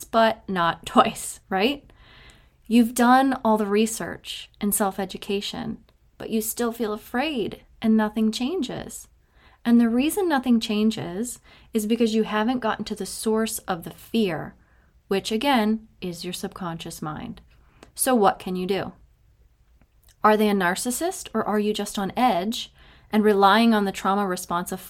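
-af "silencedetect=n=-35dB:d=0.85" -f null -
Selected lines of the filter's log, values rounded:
silence_start: 18.90
silence_end: 20.24 | silence_duration: 1.34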